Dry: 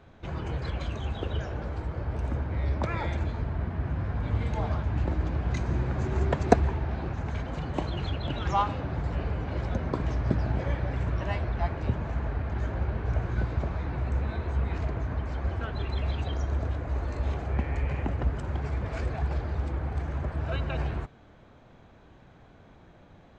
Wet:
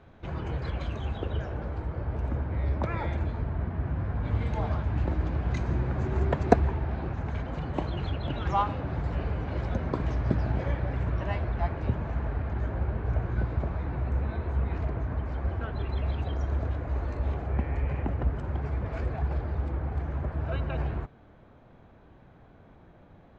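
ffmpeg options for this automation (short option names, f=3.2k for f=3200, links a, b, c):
-af "asetnsamples=n=441:p=0,asendcmd='1.18 lowpass f 2200;4.25 lowpass f 4400;5.74 lowpass f 2800;8.87 lowpass f 4900;10.71 lowpass f 2900;12.53 lowpass f 1900;16.41 lowpass f 2900;17.14 lowpass f 1800',lowpass=f=3.5k:p=1"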